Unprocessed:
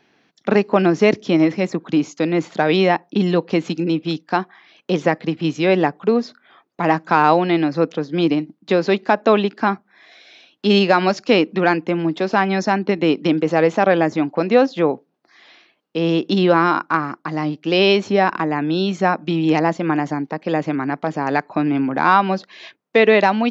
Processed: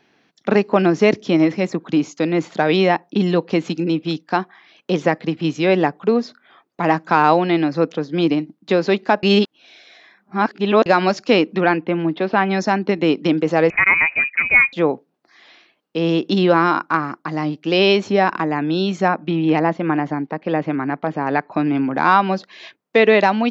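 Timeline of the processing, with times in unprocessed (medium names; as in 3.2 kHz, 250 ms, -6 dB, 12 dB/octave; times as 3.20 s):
9.23–10.86 s: reverse
11.61–12.51 s: low-pass 3.8 kHz 24 dB/octave
13.70–14.73 s: frequency inversion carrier 2.7 kHz
19.08–21.52 s: low-pass 3.2 kHz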